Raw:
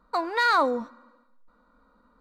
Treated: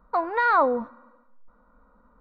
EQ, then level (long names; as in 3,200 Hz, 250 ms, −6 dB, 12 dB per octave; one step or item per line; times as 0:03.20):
head-to-tape spacing loss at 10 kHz 37 dB
parametric band 300 Hz −7.5 dB 1.1 octaves
parametric band 5,200 Hz −7 dB 2.2 octaves
+7.5 dB